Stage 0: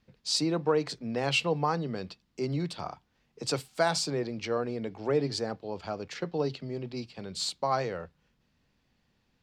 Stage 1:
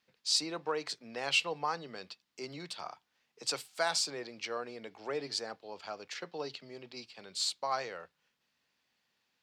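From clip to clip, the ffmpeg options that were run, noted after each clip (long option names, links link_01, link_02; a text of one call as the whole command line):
ffmpeg -i in.wav -af "highpass=frequency=1300:poles=1" out.wav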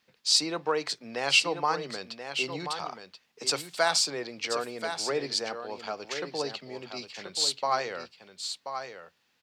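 ffmpeg -i in.wav -af "aecho=1:1:1032:0.376,volume=6.5dB" out.wav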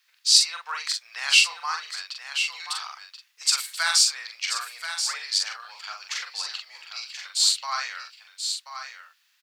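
ffmpeg -i in.wav -filter_complex "[0:a]highpass=frequency=1200:width=0.5412,highpass=frequency=1200:width=1.3066,highshelf=frequency=6300:gain=7.5,asplit=2[link_01][link_02];[link_02]adelay=43,volume=-4dB[link_03];[link_01][link_03]amix=inputs=2:normalize=0,volume=2.5dB" out.wav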